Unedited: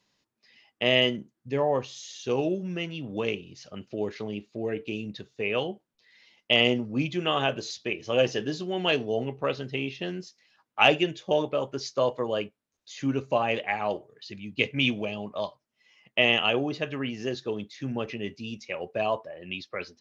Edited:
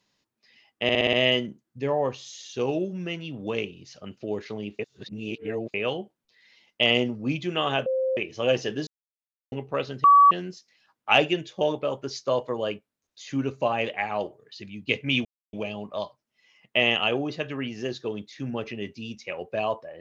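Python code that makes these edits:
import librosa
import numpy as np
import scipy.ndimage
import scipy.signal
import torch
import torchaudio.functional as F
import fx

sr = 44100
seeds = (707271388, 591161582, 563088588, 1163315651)

y = fx.edit(x, sr, fx.stutter(start_s=0.83, slice_s=0.06, count=6),
    fx.reverse_span(start_s=4.49, length_s=0.95),
    fx.bleep(start_s=7.56, length_s=0.31, hz=523.0, db=-22.0),
    fx.silence(start_s=8.57, length_s=0.65),
    fx.bleep(start_s=9.74, length_s=0.27, hz=1140.0, db=-11.0),
    fx.insert_silence(at_s=14.95, length_s=0.28), tone=tone)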